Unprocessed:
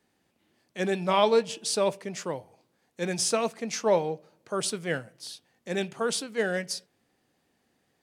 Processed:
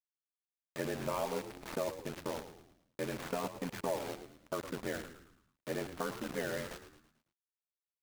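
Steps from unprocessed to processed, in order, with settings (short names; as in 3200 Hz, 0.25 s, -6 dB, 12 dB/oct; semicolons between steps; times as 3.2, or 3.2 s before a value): median filter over 15 samples; LPF 2900 Hz 24 dB/oct; comb 3.4 ms, depth 41%; de-hum 273.8 Hz, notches 36; compressor 4:1, threshold -34 dBFS, peak gain reduction 15 dB; bit-crush 7-bit; ring modulator 43 Hz; on a send: frequency-shifting echo 0.11 s, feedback 45%, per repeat -71 Hz, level -11 dB; on the sum: gain +1.5 dB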